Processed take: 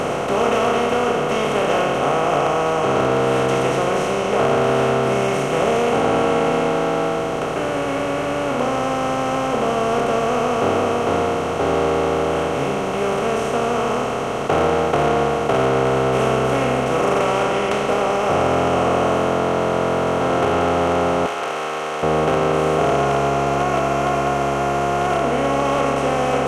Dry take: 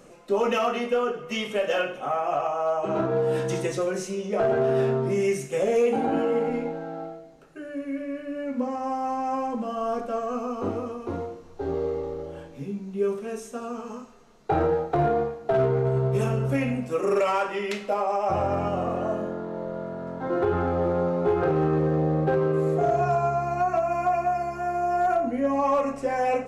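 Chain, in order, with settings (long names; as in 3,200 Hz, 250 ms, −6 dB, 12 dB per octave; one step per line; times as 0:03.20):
compressor on every frequency bin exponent 0.2
0:21.26–0:22.03: high-pass filter 1,300 Hz 6 dB per octave
level −3.5 dB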